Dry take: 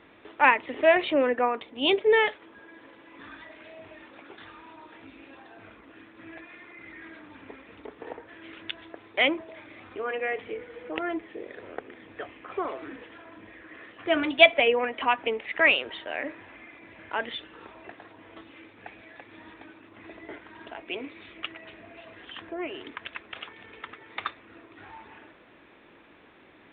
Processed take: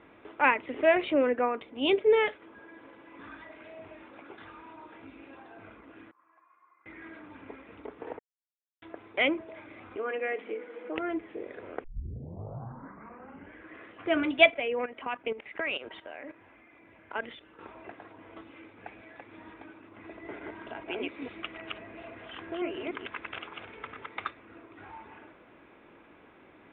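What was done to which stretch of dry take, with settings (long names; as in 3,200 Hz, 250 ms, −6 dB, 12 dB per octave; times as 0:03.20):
0:06.11–0:06.86: resonant band-pass 1,100 Hz, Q 12
0:08.19–0:08.82: silence
0:09.97–0:10.95: linear-phase brick-wall high-pass 180 Hz
0:11.84: tape start 1.81 s
0:14.50–0:17.59: output level in coarse steps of 14 dB
0:20.10–0:24.09: delay that plays each chunk backwards 148 ms, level −0.5 dB
whole clip: low-pass filter 2,400 Hz 12 dB per octave; notch filter 1,800 Hz, Q 12; dynamic equaliser 870 Hz, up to −5 dB, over −40 dBFS, Q 1.3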